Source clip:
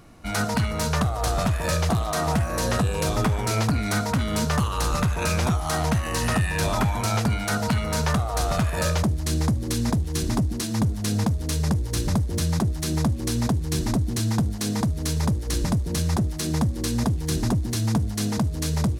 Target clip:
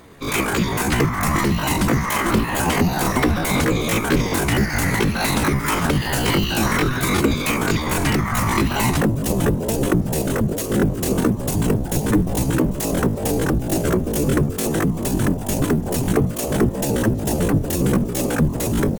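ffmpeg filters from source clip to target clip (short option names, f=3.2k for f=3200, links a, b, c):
-af "afftfilt=real='hypot(re,im)*cos(2*PI*random(0))':imag='hypot(re,im)*sin(2*PI*random(1))':win_size=512:overlap=0.75,acontrast=40,asetrate=72056,aresample=44100,atempo=0.612027,volume=5dB"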